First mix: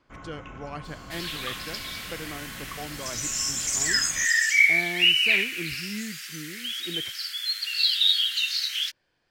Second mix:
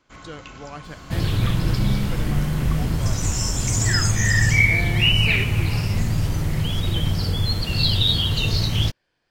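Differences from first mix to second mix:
first sound: remove running mean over 10 samples; second sound: remove steep high-pass 1500 Hz 48 dB/oct

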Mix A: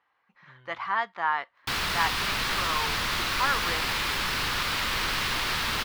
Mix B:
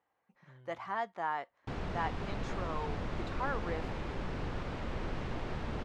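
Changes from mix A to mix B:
background: add tape spacing loss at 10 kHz 36 dB; master: add band shelf 2200 Hz -12 dB 2.7 oct

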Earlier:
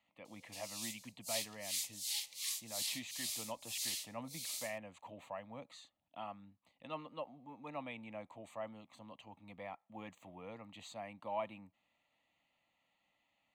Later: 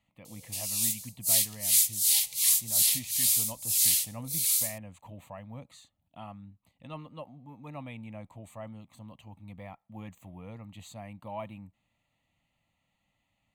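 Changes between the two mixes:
background +9.0 dB; master: remove three-band isolator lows -17 dB, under 260 Hz, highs -14 dB, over 6700 Hz

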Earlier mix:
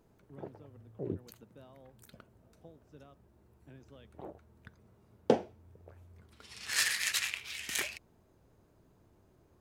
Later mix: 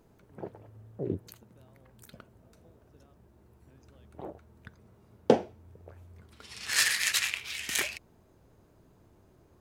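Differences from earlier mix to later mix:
speech -7.5 dB; background +4.5 dB

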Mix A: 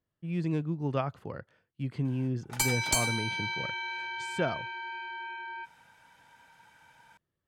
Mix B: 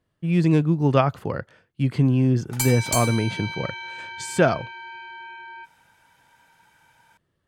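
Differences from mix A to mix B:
speech +12.0 dB; master: add high shelf 9200 Hz +8 dB

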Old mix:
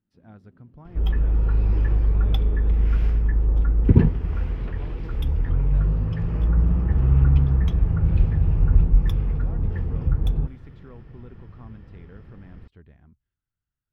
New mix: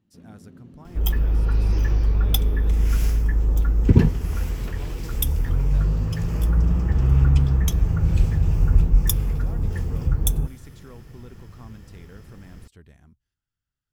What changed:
first sound +11.5 dB; master: remove air absorption 380 m

